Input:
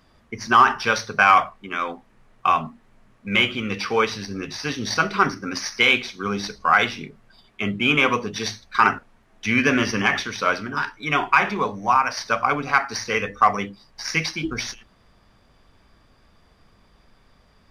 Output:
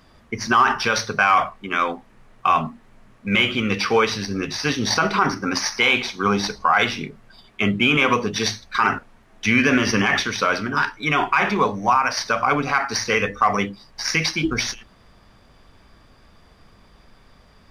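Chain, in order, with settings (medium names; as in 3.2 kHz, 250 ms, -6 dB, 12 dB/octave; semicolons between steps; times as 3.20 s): 4.83–6.78 s: peaking EQ 870 Hz +7.5 dB 0.69 oct; loudness maximiser +11 dB; trim -6 dB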